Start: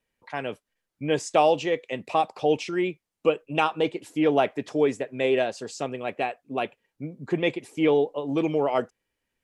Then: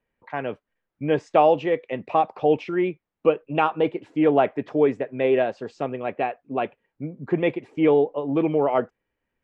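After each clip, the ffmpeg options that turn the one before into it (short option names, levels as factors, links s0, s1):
-af "lowpass=2000,volume=1.41"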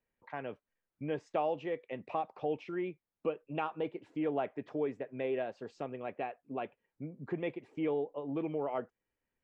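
-af "acompressor=threshold=0.0224:ratio=1.5,volume=0.376"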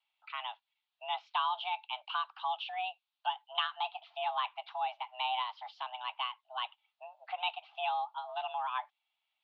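-af "highpass=f=330:t=q:w=0.5412,highpass=f=330:t=q:w=1.307,lowpass=f=3400:t=q:w=0.5176,lowpass=f=3400:t=q:w=0.7071,lowpass=f=3400:t=q:w=1.932,afreqshift=380,aexciter=amount=6.4:drive=6.4:freq=2800"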